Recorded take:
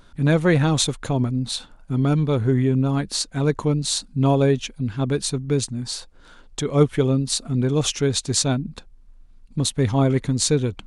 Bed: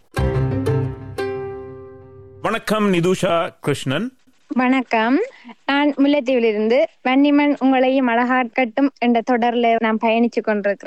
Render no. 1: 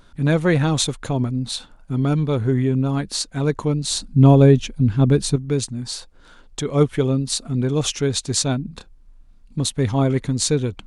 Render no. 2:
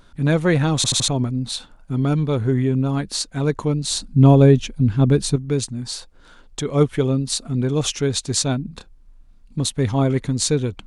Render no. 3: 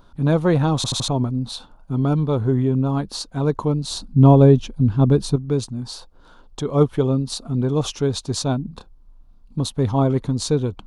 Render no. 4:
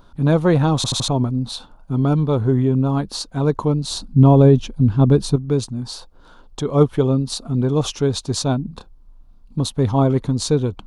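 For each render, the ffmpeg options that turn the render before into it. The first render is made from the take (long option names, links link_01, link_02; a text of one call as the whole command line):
ffmpeg -i in.wav -filter_complex "[0:a]asettb=1/sr,asplit=3[link_01][link_02][link_03];[link_01]atrim=end=3.904[link_04];[link_02]atrim=start=3.9:end=5.36,asetpts=PTS-STARTPTS,afade=type=in:duration=0.004:curve=qsin,afade=type=out:start_time=1.456:duration=0.004:curve=qsin,lowshelf=frequency=400:gain=9.5[link_05];[link_03]atrim=start=5.356[link_06];[link_04][link_05]acrossfade=duration=0.004:curve1=hsin:curve2=qsin[link_07];[link_07][link_06]acrossfade=duration=0.004:curve1=qsin:curve2=hsin,asettb=1/sr,asplit=3[link_08][link_09][link_10];[link_08]atrim=end=8.684[link_11];[link_09]atrim=start=8.68:end=9.58,asetpts=PTS-STARTPTS,afade=type=in:duration=0.004:curve=qsin,afade=type=out:start_time=0.896:duration=0.004:curve=qsin,asplit=2[link_12][link_13];[link_13]adelay=30,volume=-6dB[link_14];[link_12][link_14]amix=inputs=2:normalize=0,atrim=end_sample=39690[link_15];[link_10]atrim=start=9.576[link_16];[link_11][link_15]acrossfade=duration=0.004:curve1=hsin:curve2=qsin[link_17];[link_17][link_16]acrossfade=duration=0.004:curve1=qsin:curve2=hsin" out.wav
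ffmpeg -i in.wav -filter_complex "[0:a]asplit=5[link_01][link_02][link_03][link_04][link_05];[link_01]atrim=end=0.842[link_06];[link_02]atrim=start=0.758:end=0.842[link_07];[link_03]atrim=start=0.758:end=0.842[link_08];[link_04]atrim=start=0.758:end=0.842[link_09];[link_05]atrim=start=1.078[link_10];[link_06][link_07]acrossfade=duration=0.004:curve1=hsin:curve2=hsin[link_11];[link_11][link_08]acrossfade=duration=0.004:curve1=hsin:curve2=hsin[link_12];[link_12][link_09]acrossfade=duration=0.004:curve1=hsin:curve2=hsin[link_13];[link_13][link_10]acrossfade=duration=0.004:curve1=hsin:curve2=hsin" out.wav
ffmpeg -i in.wav -af "equalizer=frequency=1000:width_type=o:width=1:gain=6,equalizer=frequency=2000:width_type=o:width=1:gain=-11,equalizer=frequency=8000:width_type=o:width=1:gain=-9" out.wav
ffmpeg -i in.wav -af "volume=2dB,alimiter=limit=-2dB:level=0:latency=1" out.wav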